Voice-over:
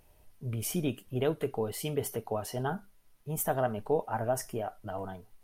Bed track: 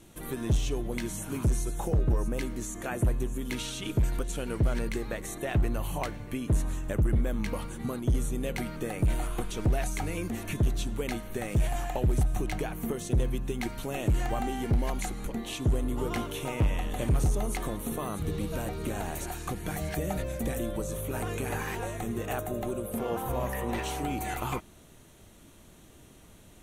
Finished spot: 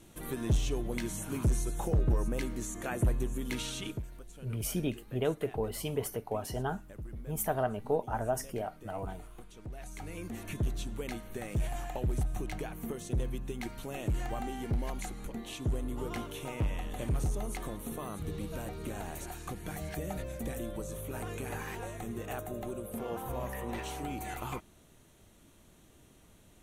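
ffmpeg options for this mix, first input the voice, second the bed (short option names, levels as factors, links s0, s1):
-filter_complex "[0:a]adelay=4000,volume=0.841[s0];[1:a]volume=3.16,afade=t=out:st=3.81:d=0.22:silence=0.158489,afade=t=in:st=9.73:d=0.68:silence=0.251189[s1];[s0][s1]amix=inputs=2:normalize=0"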